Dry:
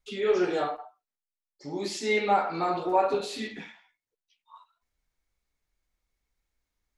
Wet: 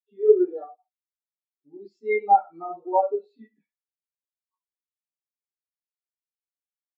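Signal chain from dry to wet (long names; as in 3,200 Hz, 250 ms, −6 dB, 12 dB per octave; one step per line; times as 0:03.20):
every bin expanded away from the loudest bin 2.5 to 1
level +7 dB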